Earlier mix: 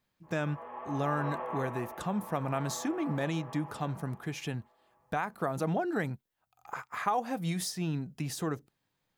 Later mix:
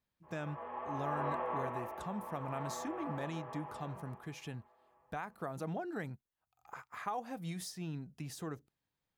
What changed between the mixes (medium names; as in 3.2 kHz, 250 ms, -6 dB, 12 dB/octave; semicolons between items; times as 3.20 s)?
speech -9.0 dB; master: add peaking EQ 60 Hz +9 dB 0.79 oct